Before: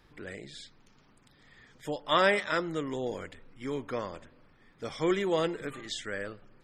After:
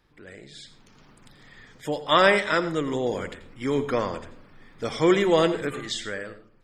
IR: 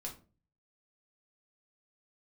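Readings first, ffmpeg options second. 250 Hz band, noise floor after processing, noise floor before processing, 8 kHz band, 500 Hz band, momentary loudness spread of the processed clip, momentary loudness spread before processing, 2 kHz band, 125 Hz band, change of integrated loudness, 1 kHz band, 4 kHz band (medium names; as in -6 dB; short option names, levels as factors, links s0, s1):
+8.0 dB, -56 dBFS, -62 dBFS, +7.0 dB, +7.5 dB, 19 LU, 19 LU, +6.5 dB, +8.0 dB, +7.5 dB, +7.0 dB, +6.5 dB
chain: -filter_complex "[0:a]dynaudnorm=f=110:g=13:m=4.47,asplit=2[s0][s1];[1:a]atrim=start_sample=2205,asetrate=41895,aresample=44100,adelay=84[s2];[s1][s2]afir=irnorm=-1:irlink=0,volume=0.299[s3];[s0][s3]amix=inputs=2:normalize=0,volume=0.631"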